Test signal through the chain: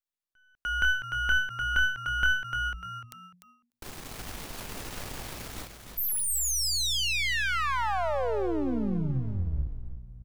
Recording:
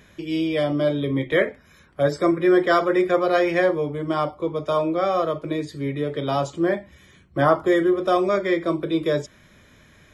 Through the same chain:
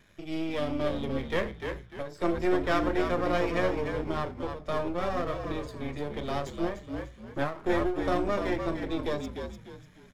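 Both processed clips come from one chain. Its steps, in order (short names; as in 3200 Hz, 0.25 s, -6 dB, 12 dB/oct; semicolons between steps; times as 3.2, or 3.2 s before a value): half-wave gain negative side -12 dB; frequency-shifting echo 0.298 s, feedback 34%, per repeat -60 Hz, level -6.5 dB; ending taper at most 120 dB/s; gain -5.5 dB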